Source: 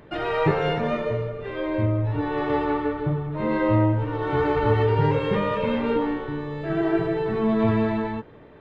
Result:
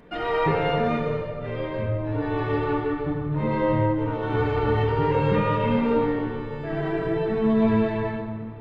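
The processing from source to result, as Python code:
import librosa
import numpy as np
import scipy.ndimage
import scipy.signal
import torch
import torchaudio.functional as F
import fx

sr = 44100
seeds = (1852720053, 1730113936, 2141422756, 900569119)

y = fx.room_shoebox(x, sr, seeds[0], volume_m3=3200.0, walls='mixed', distance_m=1.8)
y = F.gain(torch.from_numpy(y), -3.0).numpy()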